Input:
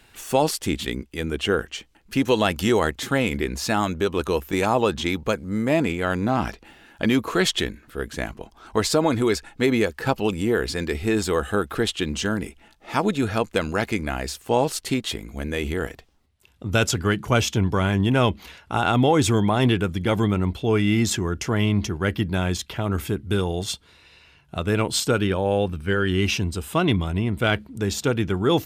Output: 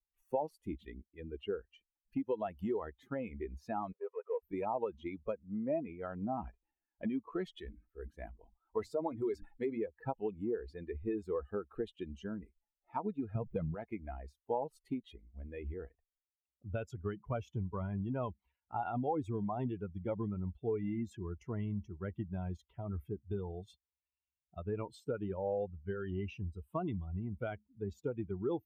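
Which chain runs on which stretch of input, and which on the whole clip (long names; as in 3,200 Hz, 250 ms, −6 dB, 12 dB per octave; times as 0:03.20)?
0:03.92–0:04.43: variable-slope delta modulation 16 kbit/s + linear-phase brick-wall high-pass 400 Hz
0:07.56–0:09.78: high-shelf EQ 4,300 Hz +6 dB + mains-hum notches 50/100/150/200/250/300 Hz + level that may fall only so fast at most 100 dB per second
0:13.35–0:13.75: converter with a step at zero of −31 dBFS + parametric band 130 Hz +14.5 dB 1.1 octaves
whole clip: spectral dynamics exaggerated over time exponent 2; downward compressor, threshold −29 dBFS; drawn EQ curve 170 Hz 0 dB, 410 Hz +3 dB, 820 Hz +5 dB, 1,600 Hz −10 dB, 2,500 Hz −11 dB, 5,100 Hz −23 dB; level −5.5 dB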